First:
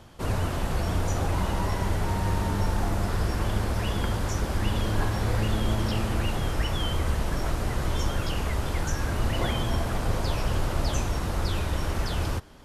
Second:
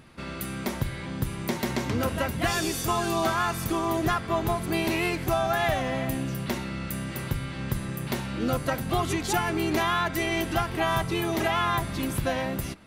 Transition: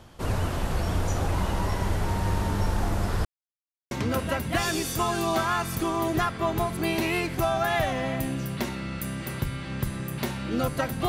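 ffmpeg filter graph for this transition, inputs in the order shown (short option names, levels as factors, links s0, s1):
-filter_complex "[0:a]apad=whole_dur=11.08,atrim=end=11.08,asplit=2[s0][s1];[s0]atrim=end=3.25,asetpts=PTS-STARTPTS,afade=t=out:st=3.246:d=0.004:c=hsin[s2];[s1]atrim=start=3.25:end=3.91,asetpts=PTS-STARTPTS,volume=0[s3];[1:a]atrim=start=1.8:end=8.97,asetpts=PTS-STARTPTS,afade=t=in:d=0.004:c=hsin[s4];[s2][s3][s4]concat=n=3:v=0:a=1"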